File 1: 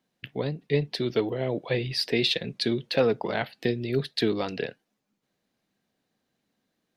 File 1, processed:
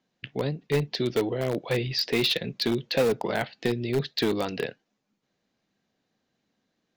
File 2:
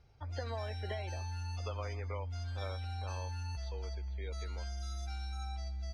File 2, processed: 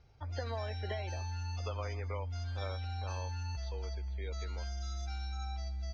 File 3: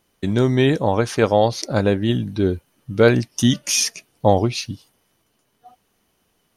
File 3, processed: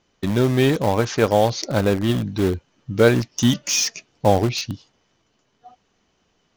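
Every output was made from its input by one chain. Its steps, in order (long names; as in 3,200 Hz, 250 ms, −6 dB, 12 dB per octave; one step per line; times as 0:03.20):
Butterworth low-pass 7,200 Hz 72 dB per octave
in parallel at −11 dB: wrap-around overflow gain 18 dB
on the sum: level −1 dB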